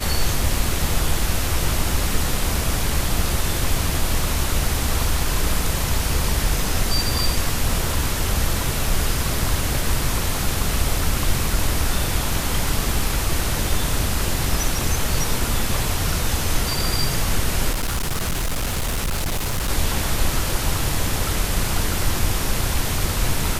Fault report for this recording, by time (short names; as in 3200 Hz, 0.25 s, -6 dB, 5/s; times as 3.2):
17.72–19.7 clipped -19 dBFS